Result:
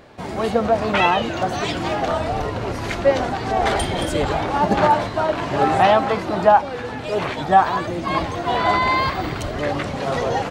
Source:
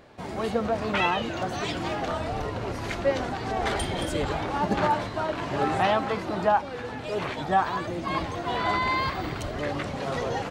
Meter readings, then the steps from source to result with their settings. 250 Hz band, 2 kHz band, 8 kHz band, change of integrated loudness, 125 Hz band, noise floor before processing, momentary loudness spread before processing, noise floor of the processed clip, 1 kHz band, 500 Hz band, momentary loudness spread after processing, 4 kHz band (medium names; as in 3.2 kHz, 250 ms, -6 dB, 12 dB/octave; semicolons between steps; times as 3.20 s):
+6.0 dB, +6.0 dB, +6.0 dB, +7.5 dB, +6.0 dB, -36 dBFS, 7 LU, -29 dBFS, +8.5 dB, +8.0 dB, 9 LU, +6.0 dB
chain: dynamic bell 700 Hz, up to +4 dB, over -33 dBFS, Q 1.8; trim +6 dB